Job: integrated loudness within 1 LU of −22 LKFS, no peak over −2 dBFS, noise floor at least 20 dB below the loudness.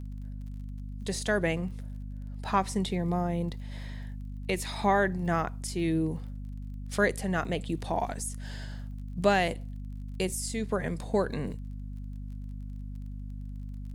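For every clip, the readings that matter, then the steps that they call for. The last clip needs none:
crackle rate 28 per second; mains hum 50 Hz; hum harmonics up to 250 Hz; level of the hum −36 dBFS; integrated loudness −32.0 LKFS; sample peak −11.0 dBFS; target loudness −22.0 LKFS
→ click removal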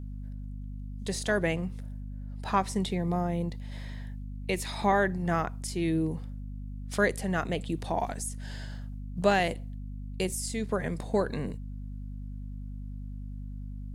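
crackle rate 0.14 per second; mains hum 50 Hz; hum harmonics up to 250 Hz; level of the hum −36 dBFS
→ hum removal 50 Hz, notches 5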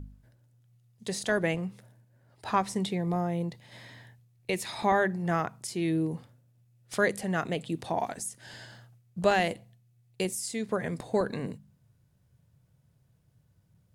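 mains hum none found; integrated loudness −30.5 LKFS; sample peak −11.0 dBFS; target loudness −22.0 LKFS
→ level +8.5 dB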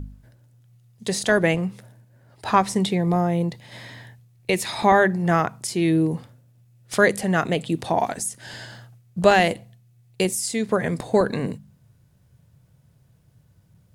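integrated loudness −22.0 LKFS; sample peak −2.5 dBFS; background noise floor −58 dBFS

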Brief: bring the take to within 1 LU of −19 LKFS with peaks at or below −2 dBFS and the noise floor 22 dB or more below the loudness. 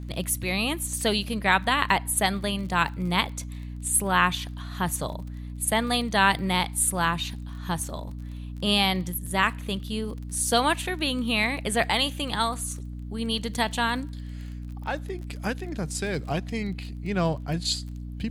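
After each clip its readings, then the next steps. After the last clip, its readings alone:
crackle rate 25 per second; mains hum 60 Hz; hum harmonics up to 300 Hz; level of the hum −33 dBFS; integrated loudness −26.0 LKFS; sample peak −3.5 dBFS; target loudness −19.0 LKFS
→ click removal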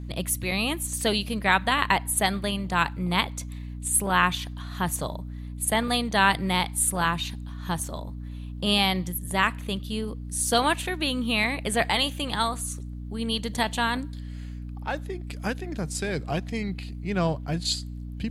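crackle rate 0.055 per second; mains hum 60 Hz; hum harmonics up to 300 Hz; level of the hum −33 dBFS
→ hum removal 60 Hz, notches 5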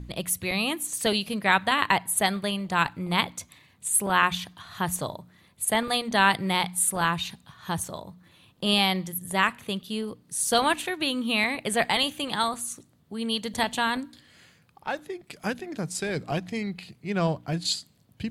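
mains hum none found; integrated loudness −26.0 LKFS; sample peak −4.0 dBFS; target loudness −19.0 LKFS
→ level +7 dB
brickwall limiter −2 dBFS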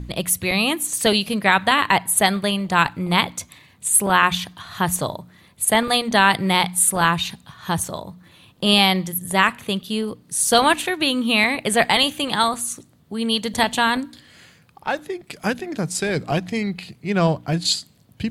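integrated loudness −19.5 LKFS; sample peak −2.0 dBFS; background noise floor −54 dBFS

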